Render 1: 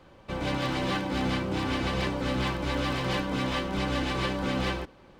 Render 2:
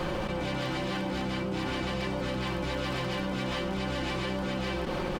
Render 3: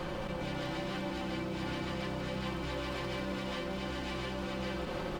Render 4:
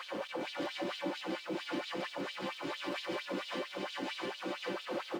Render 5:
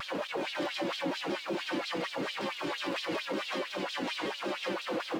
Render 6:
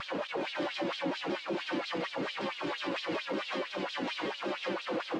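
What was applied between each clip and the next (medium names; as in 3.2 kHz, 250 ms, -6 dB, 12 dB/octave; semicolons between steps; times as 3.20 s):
comb 5.6 ms, depth 44%; level flattener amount 100%; trim -6 dB
two-band feedback delay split 650 Hz, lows 217 ms, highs 324 ms, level -9.5 dB; bit-crushed delay 87 ms, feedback 80%, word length 9-bit, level -12.5 dB; trim -6.5 dB
LFO high-pass sine 4.4 Hz 250–3800 Hz; trim -2 dB
in parallel at +0.5 dB: peak limiter -34 dBFS, peak gain reduction 9 dB; on the sum: vibrato with a chosen wave saw down 5.4 Hz, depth 160 cents
distance through air 76 m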